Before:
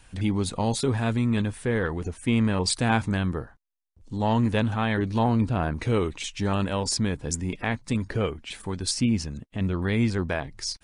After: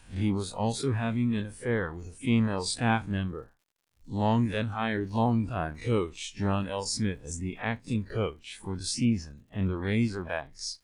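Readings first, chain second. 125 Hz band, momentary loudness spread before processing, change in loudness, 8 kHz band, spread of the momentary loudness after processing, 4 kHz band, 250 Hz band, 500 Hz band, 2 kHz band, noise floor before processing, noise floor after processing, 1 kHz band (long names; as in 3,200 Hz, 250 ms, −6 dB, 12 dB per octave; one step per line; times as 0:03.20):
−4.0 dB, 7 LU, −3.5 dB, −5.0 dB, 9 LU, −5.0 dB, −3.5 dB, −3.5 dB, −3.5 dB, −57 dBFS, −66 dBFS, −3.0 dB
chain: spectrum smeared in time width 85 ms
reverb reduction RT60 1.6 s
surface crackle 120 per second −58 dBFS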